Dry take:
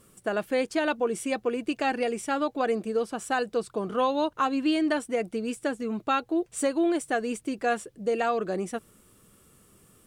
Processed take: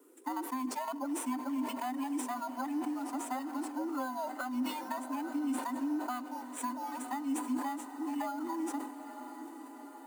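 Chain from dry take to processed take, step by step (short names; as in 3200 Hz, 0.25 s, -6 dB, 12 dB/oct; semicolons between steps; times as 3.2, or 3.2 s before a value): band inversion scrambler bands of 500 Hz; reverb RT60 2.7 s, pre-delay 18 ms, DRR 21 dB; in parallel at -5 dB: sample-rate reducer 5600 Hz, jitter 0%; on the sum: Chebyshev high-pass 250 Hz, order 10; low shelf 370 Hz +4 dB; on a send: diffused feedback echo 0.907 s, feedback 64%, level -14 dB; on the sum: compressor, threshold -25 dBFS, peak gain reduction 8 dB; bell 2700 Hz -11.5 dB 3 oct; sustainer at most 73 dB/s; gain -3.5 dB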